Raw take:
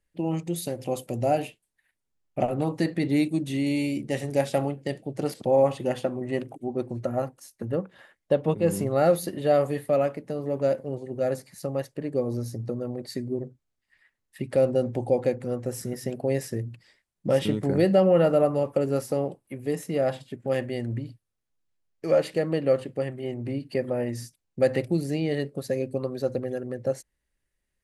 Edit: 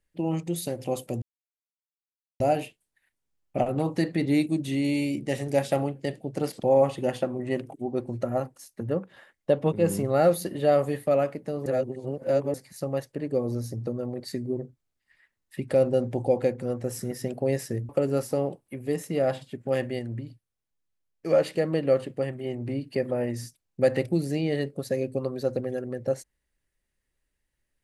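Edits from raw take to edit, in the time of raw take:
1.22 insert silence 1.18 s
10.48–11.36 reverse
16.71–18.68 cut
20.78–22.05 gain -3.5 dB

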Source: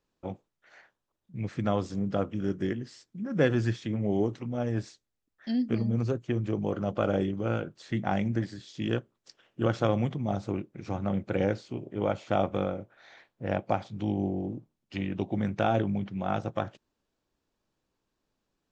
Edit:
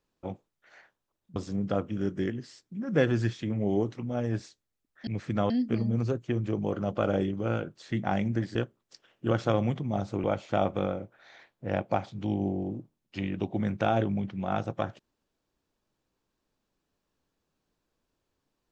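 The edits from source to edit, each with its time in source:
1.36–1.79 move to 5.5
8.55–8.9 cut
10.59–12.02 cut

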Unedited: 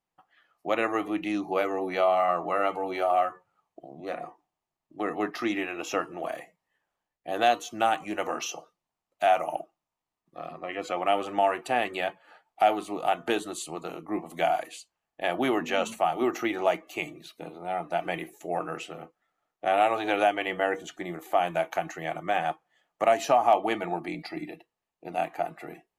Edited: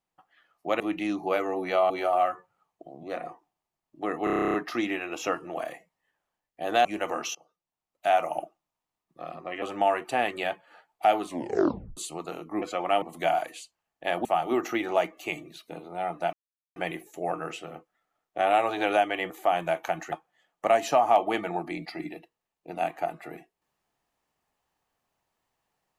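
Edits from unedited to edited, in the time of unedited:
0.8–1.05 cut
2.15–2.87 cut
5.21 stutter 0.03 s, 11 plays
7.52–8.02 cut
8.52–9.36 fade in, from -23.5 dB
10.79–11.19 move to 14.19
12.83 tape stop 0.71 s
15.42–15.95 cut
18.03 insert silence 0.43 s
20.57–21.18 cut
22–22.49 cut

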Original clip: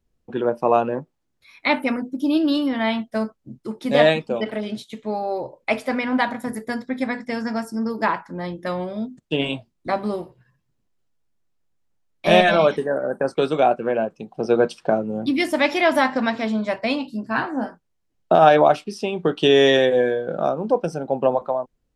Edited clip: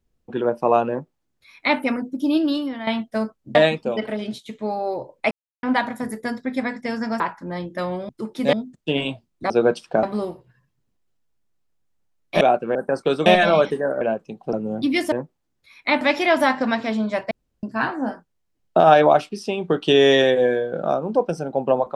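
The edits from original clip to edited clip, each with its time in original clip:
0.9–1.79 copy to 15.56
2.37–2.87 fade out, to -11 dB
3.55–3.99 move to 8.97
5.75–6.07 mute
7.64–8.08 cut
12.32–13.07 swap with 13.58–13.92
14.44–14.97 move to 9.94
16.86–17.18 room tone

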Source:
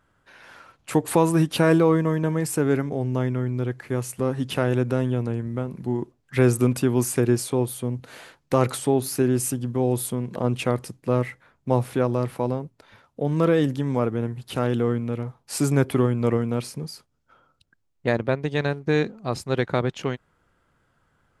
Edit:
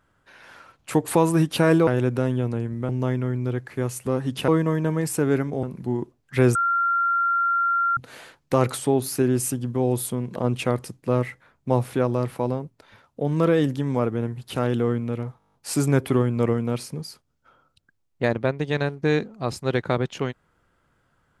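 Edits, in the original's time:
1.87–3.02 swap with 4.61–5.63
6.55–7.97 bleep 1380 Hz -18.5 dBFS
15.38 stutter 0.02 s, 9 plays

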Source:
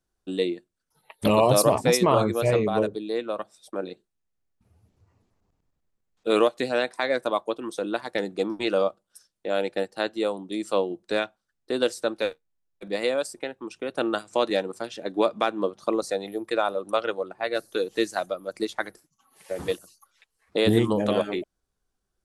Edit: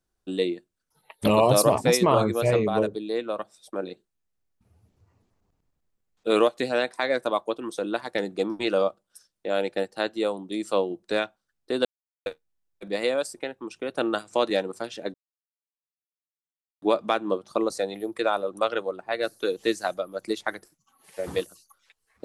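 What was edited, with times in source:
11.85–12.26 mute
15.14 insert silence 1.68 s

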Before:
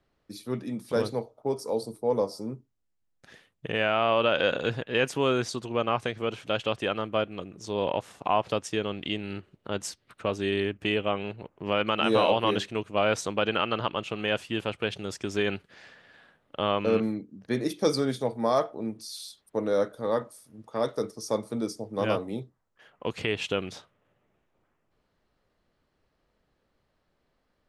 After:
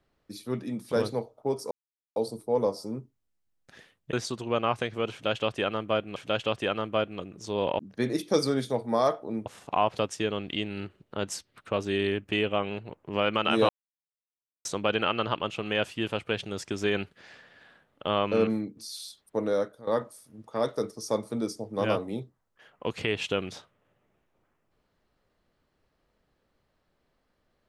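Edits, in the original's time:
1.71 insert silence 0.45 s
3.68–5.37 cut
6.36–7.4 loop, 2 plays
12.22–13.18 mute
17.3–18.97 move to 7.99
19.68–20.07 fade out linear, to -16 dB

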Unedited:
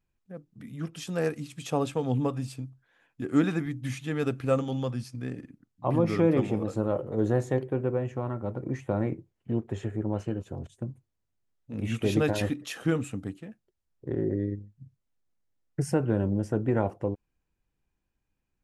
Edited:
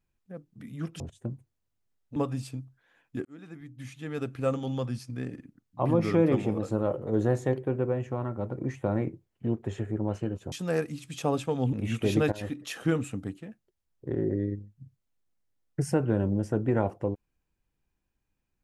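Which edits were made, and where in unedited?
1–2.21 swap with 10.57–11.73
3.3–4.96 fade in
12.32–12.7 fade in, from -15 dB

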